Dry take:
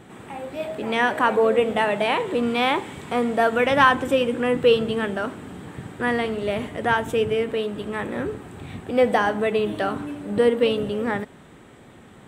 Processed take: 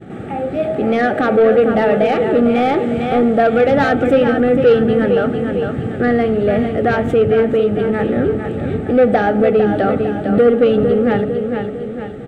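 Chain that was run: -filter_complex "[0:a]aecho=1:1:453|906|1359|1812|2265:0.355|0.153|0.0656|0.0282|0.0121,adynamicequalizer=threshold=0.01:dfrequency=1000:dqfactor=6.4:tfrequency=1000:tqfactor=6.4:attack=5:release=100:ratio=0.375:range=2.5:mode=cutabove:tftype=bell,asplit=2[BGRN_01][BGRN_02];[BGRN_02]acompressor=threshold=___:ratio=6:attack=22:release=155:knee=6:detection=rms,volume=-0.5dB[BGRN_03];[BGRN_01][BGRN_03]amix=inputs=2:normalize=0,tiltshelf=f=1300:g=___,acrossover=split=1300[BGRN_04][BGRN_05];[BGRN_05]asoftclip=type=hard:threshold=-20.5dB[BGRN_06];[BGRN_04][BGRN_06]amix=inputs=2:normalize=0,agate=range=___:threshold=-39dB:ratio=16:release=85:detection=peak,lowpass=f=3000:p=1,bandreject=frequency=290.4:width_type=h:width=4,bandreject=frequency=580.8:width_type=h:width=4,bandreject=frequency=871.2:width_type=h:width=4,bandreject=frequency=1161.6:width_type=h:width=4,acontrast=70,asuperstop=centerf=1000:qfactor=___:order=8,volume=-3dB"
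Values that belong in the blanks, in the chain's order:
-28dB, 5.5, -16dB, 3.8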